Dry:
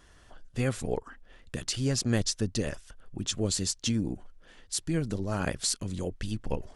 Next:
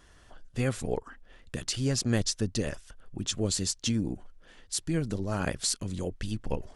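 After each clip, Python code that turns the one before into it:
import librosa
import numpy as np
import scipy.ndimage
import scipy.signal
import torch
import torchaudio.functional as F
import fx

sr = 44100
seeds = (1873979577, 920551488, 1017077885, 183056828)

y = x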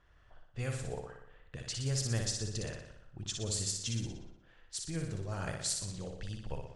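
y = fx.graphic_eq_10(x, sr, hz=(125, 250, 8000), db=(4, -9, 4))
y = fx.room_flutter(y, sr, wall_m=10.3, rt60_s=0.81)
y = fx.env_lowpass(y, sr, base_hz=2500.0, full_db=-21.5)
y = F.gain(torch.from_numpy(y), -8.5).numpy()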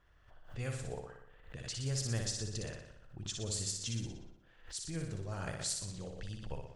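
y = fx.pre_swell(x, sr, db_per_s=120.0)
y = F.gain(torch.from_numpy(y), -2.5).numpy()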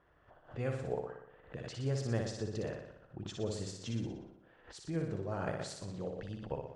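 y = fx.bandpass_q(x, sr, hz=460.0, q=0.57)
y = F.gain(torch.from_numpy(y), 7.5).numpy()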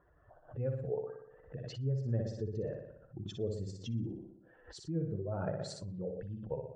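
y = fx.spec_expand(x, sr, power=1.8)
y = F.gain(torch.from_numpy(y), 1.0).numpy()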